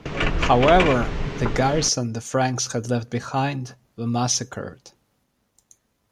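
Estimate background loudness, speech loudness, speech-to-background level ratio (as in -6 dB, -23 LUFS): -26.0 LUFS, -22.5 LUFS, 3.5 dB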